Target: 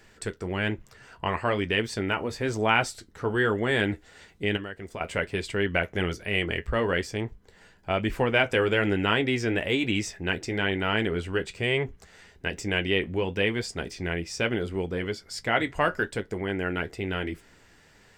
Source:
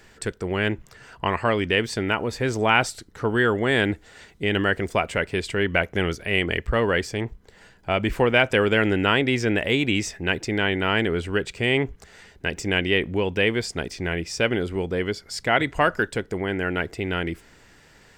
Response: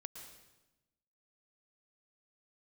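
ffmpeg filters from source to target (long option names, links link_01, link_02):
-filter_complex "[0:a]asettb=1/sr,asplit=3[link_01][link_02][link_03];[link_01]atrim=end=4.564[link_04];[link_02]atrim=start=4.56:end=5.01,asetpts=PTS-STARTPTS,afade=type=in:duration=0.004:curve=qsin,afade=type=out:start_time=0.446:duration=0.004:curve=qsin,acompressor=threshold=-30dB:ratio=8[link_05];[link_03]atrim=start=5.006[link_06];[link_04][link_05]acrossfade=duration=0.004:curve1=hsin:curve2=qsin[link_07];[link_07][link_06]acrossfade=duration=0.004:curve1=qsin:curve2=hsin,flanger=delay=8.9:depth=3.3:regen=-52:speed=1.1:shape=triangular"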